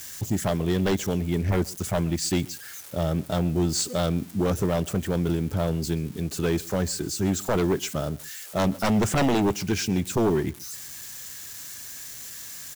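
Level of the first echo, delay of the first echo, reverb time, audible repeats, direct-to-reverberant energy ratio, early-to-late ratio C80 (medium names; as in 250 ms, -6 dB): -23.5 dB, 130 ms, no reverb, 1, no reverb, no reverb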